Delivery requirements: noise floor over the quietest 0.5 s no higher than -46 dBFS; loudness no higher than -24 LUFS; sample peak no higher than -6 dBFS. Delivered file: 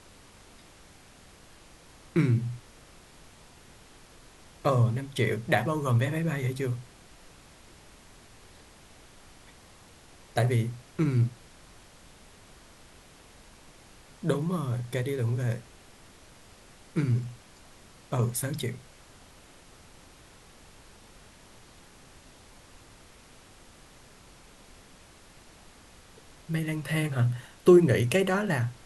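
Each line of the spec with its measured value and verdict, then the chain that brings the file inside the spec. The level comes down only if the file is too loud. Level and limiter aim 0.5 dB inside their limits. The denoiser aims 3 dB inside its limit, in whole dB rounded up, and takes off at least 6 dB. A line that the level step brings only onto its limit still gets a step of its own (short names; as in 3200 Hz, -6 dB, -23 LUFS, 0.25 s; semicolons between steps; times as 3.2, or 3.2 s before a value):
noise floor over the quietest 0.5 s -53 dBFS: OK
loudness -27.5 LUFS: OK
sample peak -8.0 dBFS: OK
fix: none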